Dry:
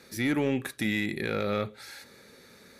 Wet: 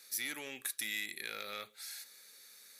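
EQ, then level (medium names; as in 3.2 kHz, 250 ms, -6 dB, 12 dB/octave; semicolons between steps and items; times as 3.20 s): differentiator; +3.5 dB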